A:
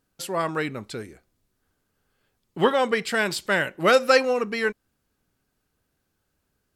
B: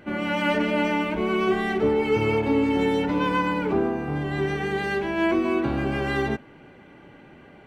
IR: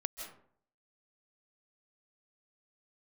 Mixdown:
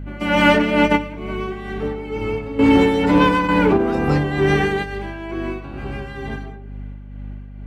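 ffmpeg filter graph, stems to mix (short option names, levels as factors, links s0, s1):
-filter_complex "[0:a]bandreject=f=60:t=h:w=6,bandreject=f=120:t=h:w=6,bandreject=f=180:t=h:w=6,bandreject=f=240:t=h:w=6,bandreject=f=300:t=h:w=6,bandreject=f=360:t=h:w=6,bandreject=f=420:t=h:w=6,volume=0.106,asplit=3[s0][s1][s2];[s0]atrim=end=0.95,asetpts=PTS-STARTPTS,afade=t=out:st=0.946:d=0.004:c=hsin[s3];[s1]atrim=start=0.95:end=2.58,asetpts=PTS-STARTPTS,volume=0[s4];[s2]atrim=start=2.58,asetpts=PTS-STARTPTS,afade=t=in:d=0.004:c=hsin[s5];[s3][s4][s5]concat=n=3:v=0:a=1,asplit=2[s6][s7];[1:a]volume=1.33,asplit=2[s8][s9];[s9]volume=0.224[s10];[s7]apad=whole_len=338021[s11];[s8][s11]sidechaingate=range=0.0224:threshold=0.00141:ratio=16:detection=peak[s12];[2:a]atrim=start_sample=2205[s13];[s10][s13]afir=irnorm=-1:irlink=0[s14];[s6][s12][s14]amix=inputs=3:normalize=0,acontrast=87,aeval=exprs='val(0)+0.0355*(sin(2*PI*50*n/s)+sin(2*PI*2*50*n/s)/2+sin(2*PI*3*50*n/s)/3+sin(2*PI*4*50*n/s)/4+sin(2*PI*5*50*n/s)/5)':c=same,tremolo=f=2.2:d=0.52"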